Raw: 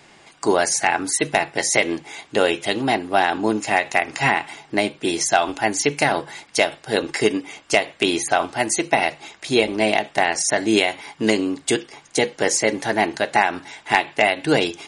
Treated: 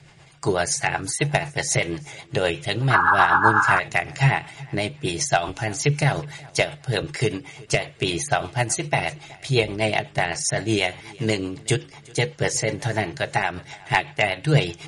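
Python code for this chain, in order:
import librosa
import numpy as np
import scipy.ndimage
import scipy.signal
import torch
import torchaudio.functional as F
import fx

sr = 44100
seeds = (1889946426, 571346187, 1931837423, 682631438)

y = fx.low_shelf_res(x, sr, hz=180.0, db=9.0, q=3.0)
y = fx.echo_feedback(y, sr, ms=370, feedback_pct=30, wet_db=-23.5)
y = fx.spec_paint(y, sr, seeds[0], shape='noise', start_s=2.9, length_s=0.9, low_hz=800.0, high_hz=1700.0, level_db=-13.0)
y = fx.rotary(y, sr, hz=8.0)
y = F.gain(torch.from_numpy(y), -1.0).numpy()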